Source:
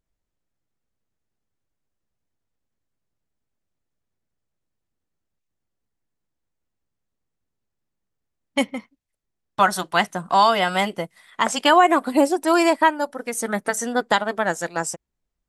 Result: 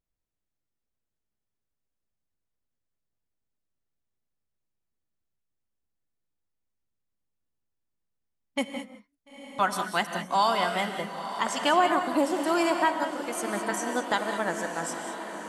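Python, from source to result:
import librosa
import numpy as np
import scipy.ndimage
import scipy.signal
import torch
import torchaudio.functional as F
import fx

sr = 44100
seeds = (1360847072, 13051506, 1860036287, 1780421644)

p1 = fx.high_shelf(x, sr, hz=9100.0, db=10.5, at=(9.87, 10.54))
p2 = p1 + fx.echo_diffused(p1, sr, ms=937, feedback_pct=67, wet_db=-11, dry=0)
p3 = fx.rev_gated(p2, sr, seeds[0], gate_ms=230, shape='rising', drr_db=7.0)
y = p3 * 10.0 ** (-8.0 / 20.0)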